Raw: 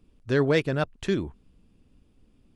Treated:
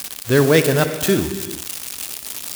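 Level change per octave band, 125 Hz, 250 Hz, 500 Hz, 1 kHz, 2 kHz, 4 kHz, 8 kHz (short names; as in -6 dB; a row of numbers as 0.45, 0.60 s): +8.5, +8.5, +9.0, +9.0, +9.0, +13.0, +26.5 dB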